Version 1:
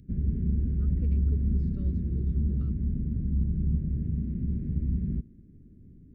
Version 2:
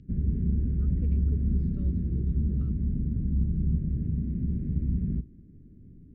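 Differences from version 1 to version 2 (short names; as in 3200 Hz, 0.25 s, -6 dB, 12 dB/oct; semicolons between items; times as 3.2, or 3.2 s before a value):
background: send on; master: add air absorption 120 m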